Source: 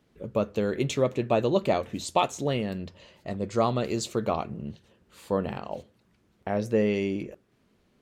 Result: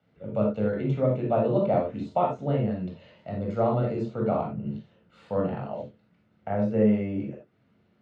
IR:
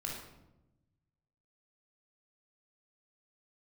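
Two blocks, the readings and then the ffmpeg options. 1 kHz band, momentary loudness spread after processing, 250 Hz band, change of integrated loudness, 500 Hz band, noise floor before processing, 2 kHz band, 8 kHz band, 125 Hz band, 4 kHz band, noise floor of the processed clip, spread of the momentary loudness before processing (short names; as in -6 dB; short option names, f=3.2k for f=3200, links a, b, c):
-0.5 dB, 14 LU, +2.5 dB, +1.0 dB, +0.5 dB, -67 dBFS, -6.5 dB, under -25 dB, +4.0 dB, under -15 dB, -66 dBFS, 14 LU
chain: -filter_complex "[0:a]acrossover=split=190|560|1500[a][b][c][d];[d]acompressor=threshold=-50dB:ratio=6[e];[a][b][c][e]amix=inputs=4:normalize=0,highpass=100,lowpass=3.1k[f];[1:a]atrim=start_sample=2205,atrim=end_sample=4410[g];[f][g]afir=irnorm=-1:irlink=0"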